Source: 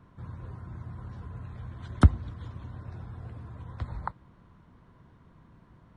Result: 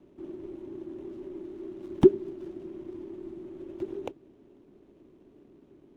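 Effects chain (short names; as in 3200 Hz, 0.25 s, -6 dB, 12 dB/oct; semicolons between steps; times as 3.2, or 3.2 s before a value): median filter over 25 samples; frequency shift -450 Hz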